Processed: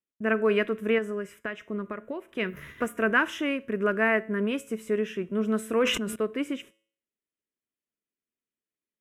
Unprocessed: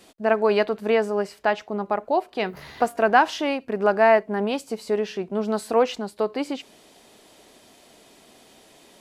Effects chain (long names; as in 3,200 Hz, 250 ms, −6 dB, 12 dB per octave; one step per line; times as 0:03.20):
noise gate −42 dBFS, range −42 dB
0:00.98–0:02.29: downward compressor, threshold −24 dBFS, peak gain reduction 8 dB
phaser with its sweep stopped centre 1,900 Hz, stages 4
tuned comb filter 110 Hz, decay 0.53 s, harmonics all, mix 40%
0:05.74–0:06.16: level that may fall only so fast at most 53 dB per second
level +4 dB